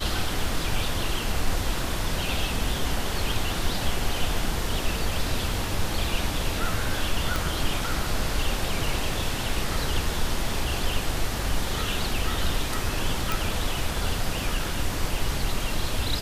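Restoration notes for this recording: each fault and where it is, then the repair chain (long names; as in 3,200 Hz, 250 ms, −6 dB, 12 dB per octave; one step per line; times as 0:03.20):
0:07.36: click
0:13.32: click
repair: click removal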